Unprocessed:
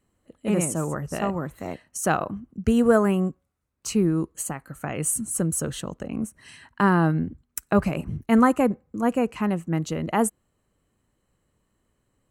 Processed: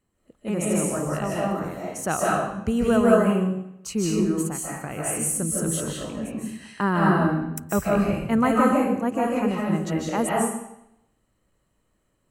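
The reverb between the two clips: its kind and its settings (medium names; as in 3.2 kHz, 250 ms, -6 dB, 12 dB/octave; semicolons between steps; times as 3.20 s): algorithmic reverb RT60 0.79 s, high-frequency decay 0.95×, pre-delay 115 ms, DRR -4.5 dB; trim -4 dB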